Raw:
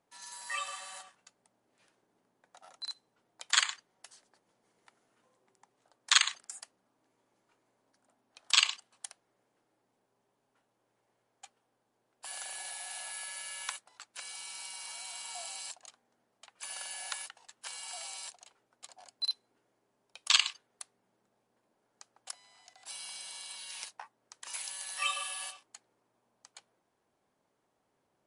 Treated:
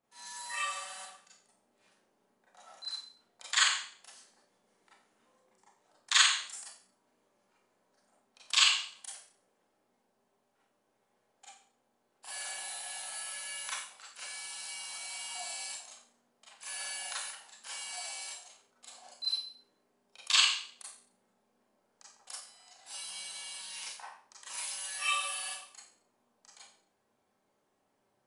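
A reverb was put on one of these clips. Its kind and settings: Schroeder reverb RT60 0.48 s, combs from 29 ms, DRR -8 dB; gain -7 dB

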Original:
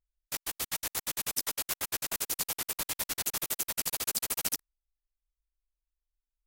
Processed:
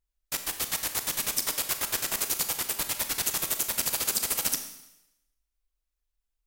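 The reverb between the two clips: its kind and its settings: Schroeder reverb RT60 0.89 s, combs from 28 ms, DRR 7.5 dB; gain +4 dB

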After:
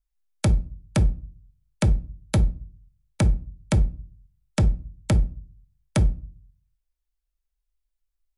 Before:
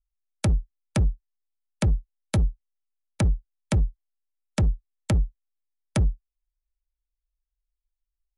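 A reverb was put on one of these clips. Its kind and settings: shoebox room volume 260 m³, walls furnished, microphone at 0.43 m; gain +2 dB

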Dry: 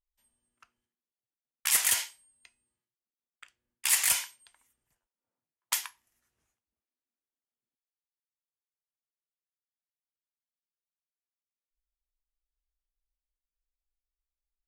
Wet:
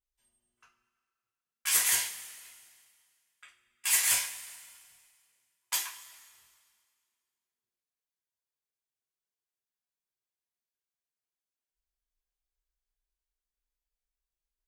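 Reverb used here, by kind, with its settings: two-slope reverb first 0.28 s, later 2 s, from -19 dB, DRR -6.5 dB; gain -7.5 dB

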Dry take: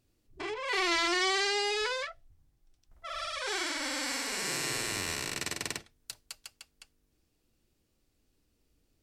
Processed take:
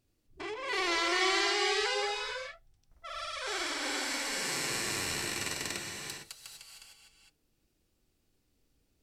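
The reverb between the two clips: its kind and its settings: non-linear reverb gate 0.48 s rising, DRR 1.5 dB; gain -2.5 dB

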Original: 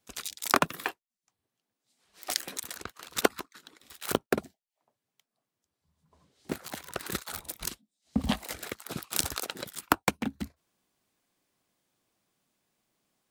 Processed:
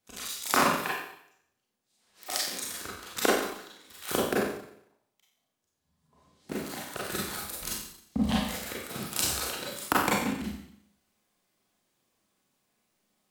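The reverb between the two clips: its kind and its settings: Schroeder reverb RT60 0.7 s, combs from 30 ms, DRR -6 dB; gain -4.5 dB

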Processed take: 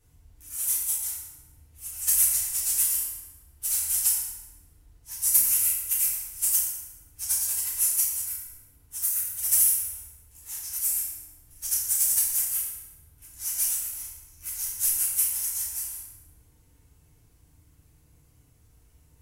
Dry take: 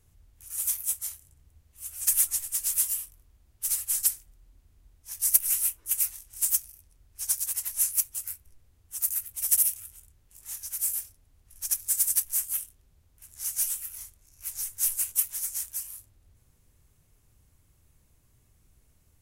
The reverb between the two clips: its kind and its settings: FDN reverb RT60 1.2 s, low-frequency decay 1.2×, high-frequency decay 0.7×, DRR -7 dB; gain -4 dB

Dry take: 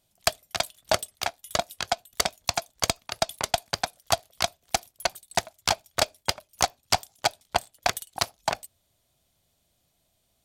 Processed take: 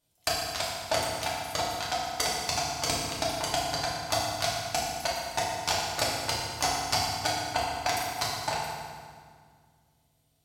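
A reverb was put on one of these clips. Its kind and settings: FDN reverb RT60 1.9 s, low-frequency decay 1.5×, high-frequency decay 0.8×, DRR -6.5 dB; gain -8.5 dB

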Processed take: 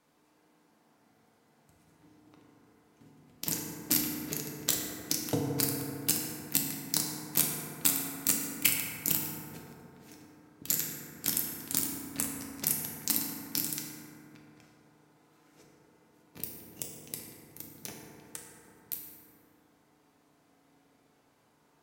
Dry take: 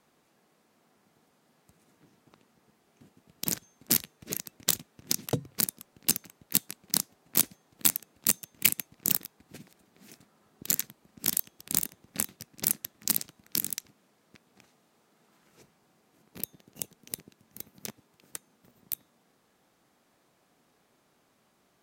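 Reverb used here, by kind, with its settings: FDN reverb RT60 3.3 s, high-frequency decay 0.3×, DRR -2.5 dB; gain -4 dB

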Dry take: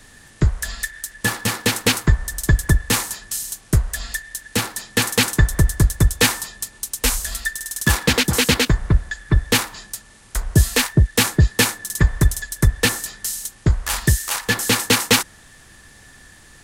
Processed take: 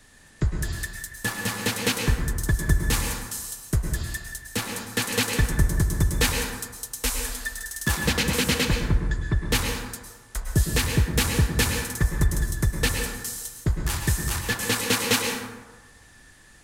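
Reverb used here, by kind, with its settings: plate-style reverb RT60 1.2 s, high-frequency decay 0.5×, pre-delay 95 ms, DRR 2.5 dB; gain -7.5 dB

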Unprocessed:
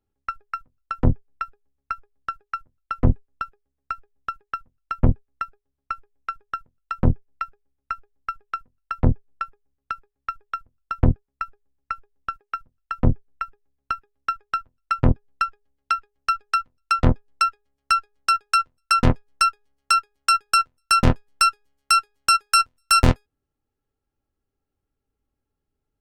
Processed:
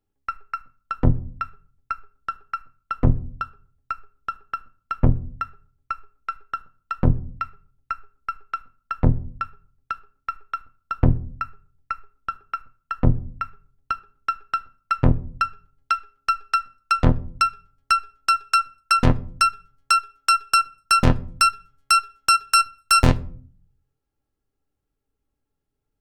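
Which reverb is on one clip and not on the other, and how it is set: shoebox room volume 420 m³, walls furnished, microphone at 0.42 m

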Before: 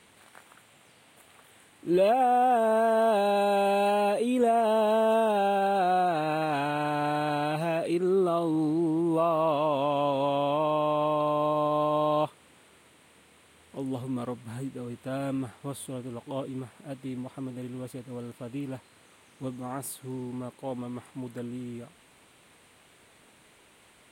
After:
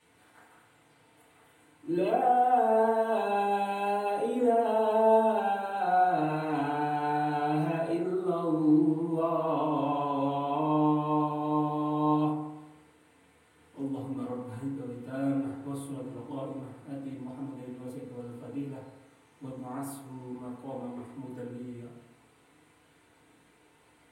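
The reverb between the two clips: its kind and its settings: FDN reverb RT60 1 s, low-frequency decay 1×, high-frequency decay 0.3×, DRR -10 dB; gain -14.5 dB

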